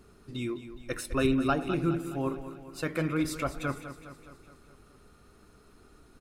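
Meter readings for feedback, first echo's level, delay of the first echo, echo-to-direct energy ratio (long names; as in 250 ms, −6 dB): 58%, −12.0 dB, 208 ms, −10.0 dB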